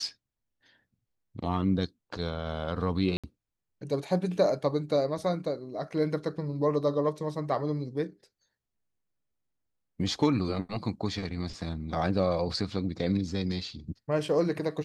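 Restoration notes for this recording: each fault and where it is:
3.17–3.24 gap 66 ms

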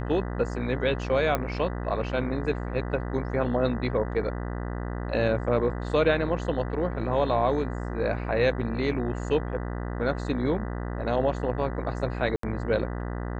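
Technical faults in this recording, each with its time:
buzz 60 Hz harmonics 33 -32 dBFS
1.35 pop -12 dBFS
12.36–12.43 gap 73 ms

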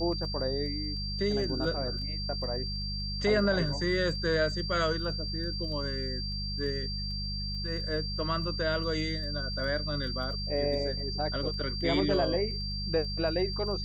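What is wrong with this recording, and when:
crackle 11/s -40 dBFS
hum 50 Hz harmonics 4 -36 dBFS
tone 4700 Hz -36 dBFS

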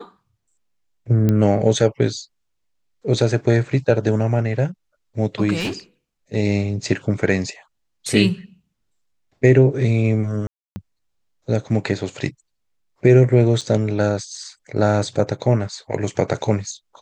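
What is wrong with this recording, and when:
1.29 pop -8 dBFS
5.59–5.73 clipped -20 dBFS
10.47–10.76 gap 0.29 s
13.61–13.62 gap 5.8 ms

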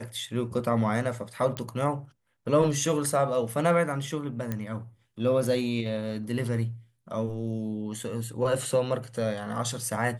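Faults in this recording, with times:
1.57 pop -17 dBFS
4.52 pop -17 dBFS

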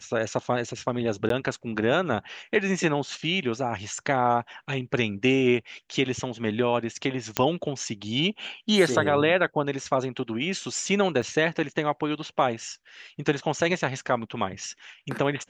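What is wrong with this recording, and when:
1.29–1.3 gap 13 ms
7.37 pop -6 dBFS
11.22 gap 4.4 ms

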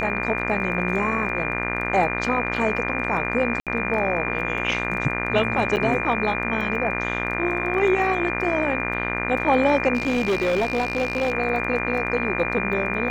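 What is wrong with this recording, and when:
buzz 60 Hz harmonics 40 -28 dBFS
crackle 12/s -32 dBFS
tone 2400 Hz -29 dBFS
3.6–3.67 gap 67 ms
5.76–5.77 gap 8.7 ms
9.94–11.32 clipped -17.5 dBFS

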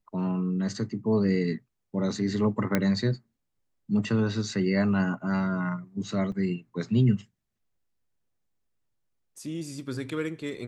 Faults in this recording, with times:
2.75 pop -10 dBFS
6.32 gap 3.2 ms

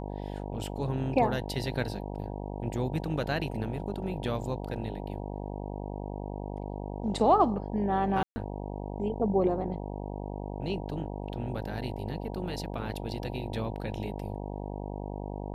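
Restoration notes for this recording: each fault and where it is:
buzz 50 Hz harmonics 19 -37 dBFS
8.23–8.36 gap 0.13 s

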